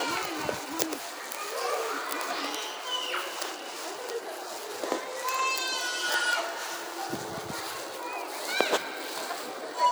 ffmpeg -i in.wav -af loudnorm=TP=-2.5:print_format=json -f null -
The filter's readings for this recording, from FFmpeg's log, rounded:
"input_i" : "-31.2",
"input_tp" : "-5.6",
"input_lra" : "2.2",
"input_thresh" : "-41.2",